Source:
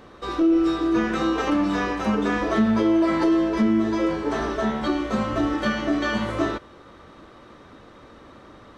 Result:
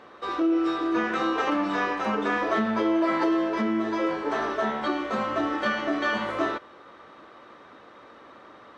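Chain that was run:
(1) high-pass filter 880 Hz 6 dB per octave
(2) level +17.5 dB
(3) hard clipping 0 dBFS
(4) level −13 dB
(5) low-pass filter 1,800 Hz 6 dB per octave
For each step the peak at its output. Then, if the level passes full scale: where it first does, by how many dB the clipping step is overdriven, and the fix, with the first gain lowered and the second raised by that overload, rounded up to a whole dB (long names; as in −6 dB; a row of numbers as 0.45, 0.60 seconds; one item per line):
−14.0, +3.5, 0.0, −13.0, −13.0 dBFS
step 2, 3.5 dB
step 2 +13.5 dB, step 4 −9 dB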